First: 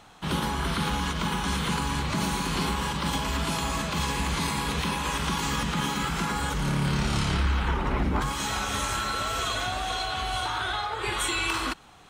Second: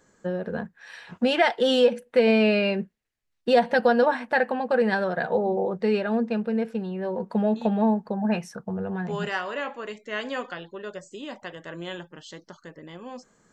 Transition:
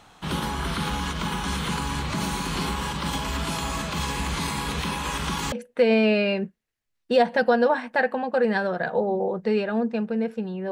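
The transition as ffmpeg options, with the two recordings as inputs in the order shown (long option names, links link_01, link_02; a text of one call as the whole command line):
ffmpeg -i cue0.wav -i cue1.wav -filter_complex "[0:a]apad=whole_dur=10.71,atrim=end=10.71,atrim=end=5.522[link_01];[1:a]atrim=start=1.888:end=7.08[link_02];[link_01][link_02]acrossfade=duration=0.004:curve1=hsin:curve2=hsin" out.wav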